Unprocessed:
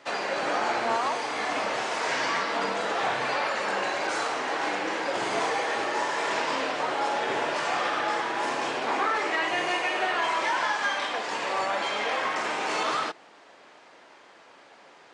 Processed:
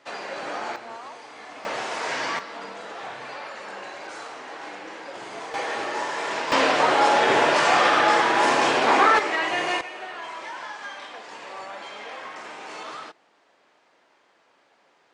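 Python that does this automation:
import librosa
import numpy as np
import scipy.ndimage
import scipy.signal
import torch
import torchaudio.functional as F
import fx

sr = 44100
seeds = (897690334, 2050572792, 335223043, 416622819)

y = fx.gain(x, sr, db=fx.steps((0.0, -4.5), (0.76, -12.5), (1.65, -0.5), (2.39, -9.0), (5.54, -0.5), (6.52, 9.0), (9.19, 2.0), (9.81, -9.5)))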